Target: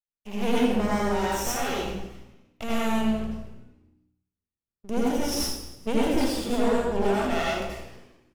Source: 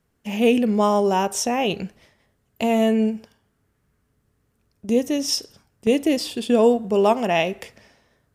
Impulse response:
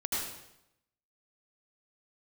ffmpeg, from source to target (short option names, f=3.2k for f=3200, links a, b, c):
-filter_complex "[0:a]acrossover=split=360|3000[a][b][c];[b]acompressor=threshold=-18dB:ratio=6[d];[a][d][c]amix=inputs=3:normalize=0,agate=range=-33dB:threshold=-50dB:ratio=3:detection=peak,aeval=exprs='max(val(0),0)':c=same,asplit=6[e][f][g][h][i][j];[f]adelay=131,afreqshift=-61,volume=-20.5dB[k];[g]adelay=262,afreqshift=-122,volume=-25.1dB[l];[h]adelay=393,afreqshift=-183,volume=-29.7dB[m];[i]adelay=524,afreqshift=-244,volume=-34.2dB[n];[j]adelay=655,afreqshift=-305,volume=-38.8dB[o];[e][k][l][m][n][o]amix=inputs=6:normalize=0[p];[1:a]atrim=start_sample=2205[q];[p][q]afir=irnorm=-1:irlink=0,volume=-5dB"